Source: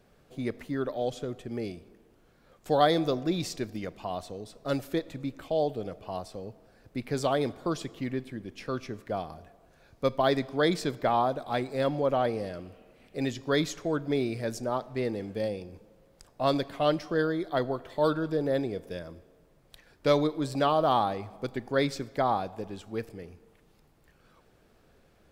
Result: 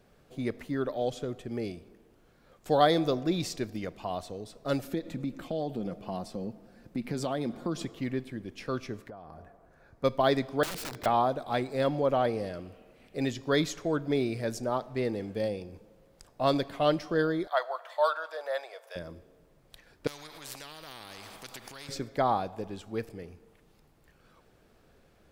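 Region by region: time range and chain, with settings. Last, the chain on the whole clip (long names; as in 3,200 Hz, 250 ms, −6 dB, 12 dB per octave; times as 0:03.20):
0:04.83–0:07.86: parametric band 230 Hz +11.5 dB 0.72 octaves + comb filter 5.7 ms, depth 33% + downward compressor 2.5 to 1, threshold −30 dBFS
0:09.09–0:10.04: high shelf with overshoot 2,200 Hz −7.5 dB, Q 1.5 + downward compressor 12 to 1, threshold −41 dBFS
0:10.63–0:11.06: downward compressor 4 to 1, threshold −31 dBFS + wrap-around overflow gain 32.5 dB
0:17.47–0:18.96: elliptic high-pass filter 590 Hz, stop band 70 dB + parametric band 1,200 Hz +5 dB 1.2 octaves
0:20.07–0:21.89: downward compressor 4 to 1, threshold −37 dBFS + every bin compressed towards the loudest bin 4 to 1
whole clip: no processing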